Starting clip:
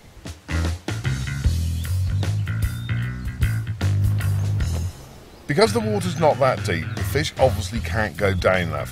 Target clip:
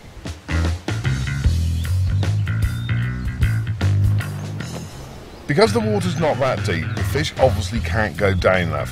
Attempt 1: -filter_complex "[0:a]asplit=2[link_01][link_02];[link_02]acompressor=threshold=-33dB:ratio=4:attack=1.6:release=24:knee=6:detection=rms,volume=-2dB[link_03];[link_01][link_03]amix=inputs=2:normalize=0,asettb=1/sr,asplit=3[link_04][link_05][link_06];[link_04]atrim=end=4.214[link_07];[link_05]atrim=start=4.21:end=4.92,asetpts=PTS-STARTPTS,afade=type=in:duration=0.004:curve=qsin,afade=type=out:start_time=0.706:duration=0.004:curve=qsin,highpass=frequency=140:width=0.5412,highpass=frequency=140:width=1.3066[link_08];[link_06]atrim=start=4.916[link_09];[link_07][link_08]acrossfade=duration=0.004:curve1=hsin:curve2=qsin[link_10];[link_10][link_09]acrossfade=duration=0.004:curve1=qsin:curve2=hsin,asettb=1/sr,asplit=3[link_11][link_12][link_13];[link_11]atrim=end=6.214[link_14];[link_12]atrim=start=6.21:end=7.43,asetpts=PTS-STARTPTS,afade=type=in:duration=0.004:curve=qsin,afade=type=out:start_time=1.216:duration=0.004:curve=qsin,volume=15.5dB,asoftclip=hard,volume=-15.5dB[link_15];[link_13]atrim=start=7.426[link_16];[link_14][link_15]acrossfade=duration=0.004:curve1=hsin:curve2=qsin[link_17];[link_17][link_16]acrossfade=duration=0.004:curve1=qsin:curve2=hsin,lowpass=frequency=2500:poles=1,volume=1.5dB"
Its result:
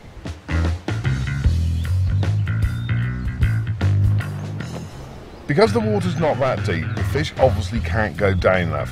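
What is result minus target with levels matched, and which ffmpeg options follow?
8,000 Hz band −5.5 dB
-filter_complex "[0:a]asplit=2[link_01][link_02];[link_02]acompressor=threshold=-33dB:ratio=4:attack=1.6:release=24:knee=6:detection=rms,volume=-2dB[link_03];[link_01][link_03]amix=inputs=2:normalize=0,asettb=1/sr,asplit=3[link_04][link_05][link_06];[link_04]atrim=end=4.214[link_07];[link_05]atrim=start=4.21:end=4.92,asetpts=PTS-STARTPTS,afade=type=in:duration=0.004:curve=qsin,afade=type=out:start_time=0.706:duration=0.004:curve=qsin,highpass=frequency=140:width=0.5412,highpass=frequency=140:width=1.3066[link_08];[link_06]atrim=start=4.916[link_09];[link_07][link_08]acrossfade=duration=0.004:curve1=hsin:curve2=qsin[link_10];[link_10][link_09]acrossfade=duration=0.004:curve1=qsin:curve2=hsin,asettb=1/sr,asplit=3[link_11][link_12][link_13];[link_11]atrim=end=6.214[link_14];[link_12]atrim=start=6.21:end=7.43,asetpts=PTS-STARTPTS,afade=type=in:duration=0.004:curve=qsin,afade=type=out:start_time=1.216:duration=0.004:curve=qsin,volume=15.5dB,asoftclip=hard,volume=-15.5dB[link_15];[link_13]atrim=start=7.426[link_16];[link_14][link_15]acrossfade=duration=0.004:curve1=hsin:curve2=qsin[link_17];[link_17][link_16]acrossfade=duration=0.004:curve1=qsin:curve2=hsin,lowpass=frequency=6100:poles=1,volume=1.5dB"

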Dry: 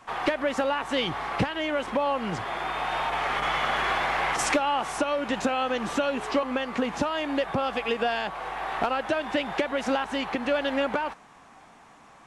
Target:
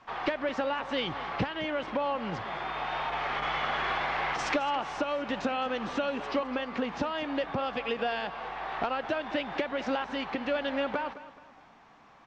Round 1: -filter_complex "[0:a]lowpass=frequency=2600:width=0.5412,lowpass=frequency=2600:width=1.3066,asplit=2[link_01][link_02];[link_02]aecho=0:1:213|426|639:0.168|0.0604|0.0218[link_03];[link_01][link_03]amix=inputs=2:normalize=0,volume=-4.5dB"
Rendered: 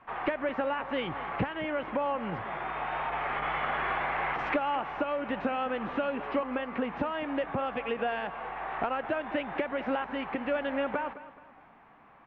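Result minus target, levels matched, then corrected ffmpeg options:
4,000 Hz band −6.5 dB
-filter_complex "[0:a]lowpass=frequency=5400:width=0.5412,lowpass=frequency=5400:width=1.3066,asplit=2[link_01][link_02];[link_02]aecho=0:1:213|426|639:0.168|0.0604|0.0218[link_03];[link_01][link_03]amix=inputs=2:normalize=0,volume=-4.5dB"

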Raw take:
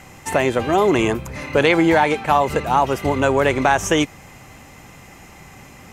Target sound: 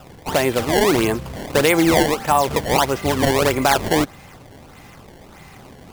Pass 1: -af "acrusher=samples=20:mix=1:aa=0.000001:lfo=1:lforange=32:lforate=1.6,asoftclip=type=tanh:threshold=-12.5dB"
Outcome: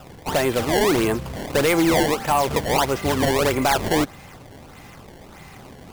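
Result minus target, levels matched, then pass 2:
soft clipping: distortion +17 dB
-af "acrusher=samples=20:mix=1:aa=0.000001:lfo=1:lforange=32:lforate=1.6,asoftclip=type=tanh:threshold=-0.5dB"

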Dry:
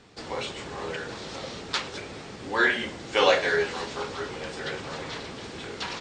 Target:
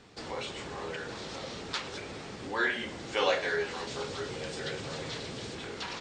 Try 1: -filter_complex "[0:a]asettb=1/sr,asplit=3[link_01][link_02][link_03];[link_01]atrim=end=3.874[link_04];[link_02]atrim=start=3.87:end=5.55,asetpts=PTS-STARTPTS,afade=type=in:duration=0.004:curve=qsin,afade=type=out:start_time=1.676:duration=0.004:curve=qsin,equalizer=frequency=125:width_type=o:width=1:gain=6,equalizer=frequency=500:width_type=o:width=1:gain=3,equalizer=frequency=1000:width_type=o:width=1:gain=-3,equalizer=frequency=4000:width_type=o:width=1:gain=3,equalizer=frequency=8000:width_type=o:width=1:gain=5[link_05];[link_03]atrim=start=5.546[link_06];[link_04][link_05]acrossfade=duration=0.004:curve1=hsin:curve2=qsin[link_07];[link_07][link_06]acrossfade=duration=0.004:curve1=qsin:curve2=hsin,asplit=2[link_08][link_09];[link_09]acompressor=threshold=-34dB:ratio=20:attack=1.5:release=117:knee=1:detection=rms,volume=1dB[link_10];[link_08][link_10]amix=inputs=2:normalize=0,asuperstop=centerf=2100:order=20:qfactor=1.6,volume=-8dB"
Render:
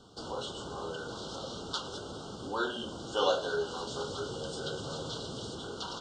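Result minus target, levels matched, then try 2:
2,000 Hz band −7.0 dB
-filter_complex "[0:a]asettb=1/sr,asplit=3[link_01][link_02][link_03];[link_01]atrim=end=3.874[link_04];[link_02]atrim=start=3.87:end=5.55,asetpts=PTS-STARTPTS,afade=type=in:duration=0.004:curve=qsin,afade=type=out:start_time=1.676:duration=0.004:curve=qsin,equalizer=frequency=125:width_type=o:width=1:gain=6,equalizer=frequency=500:width_type=o:width=1:gain=3,equalizer=frequency=1000:width_type=o:width=1:gain=-3,equalizer=frequency=4000:width_type=o:width=1:gain=3,equalizer=frequency=8000:width_type=o:width=1:gain=5[link_05];[link_03]atrim=start=5.546[link_06];[link_04][link_05]acrossfade=duration=0.004:curve1=hsin:curve2=qsin[link_07];[link_07][link_06]acrossfade=duration=0.004:curve1=qsin:curve2=hsin,asplit=2[link_08][link_09];[link_09]acompressor=threshold=-34dB:ratio=20:attack=1.5:release=117:knee=1:detection=rms,volume=1dB[link_10];[link_08][link_10]amix=inputs=2:normalize=0,volume=-8dB"

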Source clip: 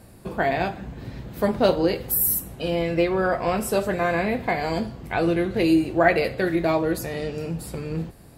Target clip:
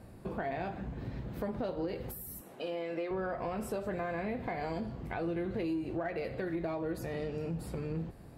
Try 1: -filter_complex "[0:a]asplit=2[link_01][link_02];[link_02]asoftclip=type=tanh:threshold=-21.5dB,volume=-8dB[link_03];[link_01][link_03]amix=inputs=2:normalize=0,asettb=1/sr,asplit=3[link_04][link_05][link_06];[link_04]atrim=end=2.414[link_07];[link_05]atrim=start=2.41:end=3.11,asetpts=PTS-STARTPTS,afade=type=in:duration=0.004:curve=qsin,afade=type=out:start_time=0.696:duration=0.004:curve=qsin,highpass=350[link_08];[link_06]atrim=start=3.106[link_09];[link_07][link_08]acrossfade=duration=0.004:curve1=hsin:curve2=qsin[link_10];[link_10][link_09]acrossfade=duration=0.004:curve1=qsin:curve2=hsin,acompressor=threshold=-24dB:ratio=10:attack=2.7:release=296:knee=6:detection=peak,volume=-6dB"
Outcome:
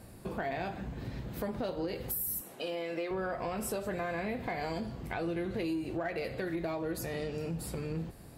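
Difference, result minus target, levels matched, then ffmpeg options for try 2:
8,000 Hz band +9.5 dB
-filter_complex "[0:a]asplit=2[link_01][link_02];[link_02]asoftclip=type=tanh:threshold=-21.5dB,volume=-8dB[link_03];[link_01][link_03]amix=inputs=2:normalize=0,asettb=1/sr,asplit=3[link_04][link_05][link_06];[link_04]atrim=end=2.414[link_07];[link_05]atrim=start=2.41:end=3.11,asetpts=PTS-STARTPTS,afade=type=in:duration=0.004:curve=qsin,afade=type=out:start_time=0.696:duration=0.004:curve=qsin,highpass=350[link_08];[link_06]atrim=start=3.106[link_09];[link_07][link_08]acrossfade=duration=0.004:curve1=hsin:curve2=qsin[link_10];[link_10][link_09]acrossfade=duration=0.004:curve1=qsin:curve2=hsin,acompressor=threshold=-24dB:ratio=10:attack=2.7:release=296:knee=6:detection=peak,equalizer=frequency=14000:width_type=o:width=2.5:gain=-11,volume=-6dB"

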